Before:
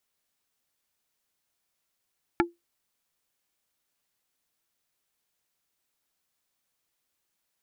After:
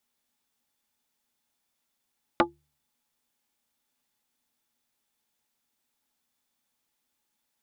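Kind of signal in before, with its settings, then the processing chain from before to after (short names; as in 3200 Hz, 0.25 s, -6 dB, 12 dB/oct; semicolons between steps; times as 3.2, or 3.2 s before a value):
wood hit plate, lowest mode 343 Hz, decay 0.18 s, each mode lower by 1 dB, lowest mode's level -17 dB
de-hum 73.71 Hz, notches 2; small resonant body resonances 240/850/3500 Hz, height 11 dB, ringing for 85 ms; Doppler distortion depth 0.5 ms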